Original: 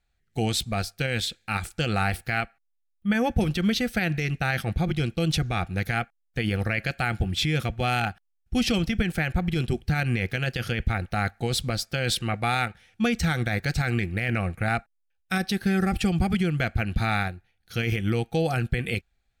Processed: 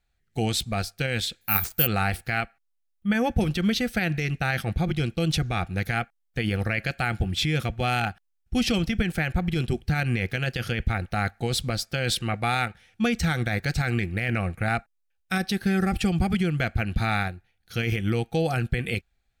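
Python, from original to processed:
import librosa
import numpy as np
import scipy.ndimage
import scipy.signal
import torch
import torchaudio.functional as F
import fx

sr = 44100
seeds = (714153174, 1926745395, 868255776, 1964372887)

y = fx.resample_bad(x, sr, factor=3, down='none', up='zero_stuff', at=(1.41, 1.87))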